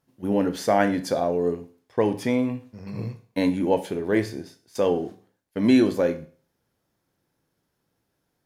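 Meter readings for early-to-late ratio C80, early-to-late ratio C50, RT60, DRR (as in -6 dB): 19.0 dB, 14.5 dB, 0.40 s, 8.5 dB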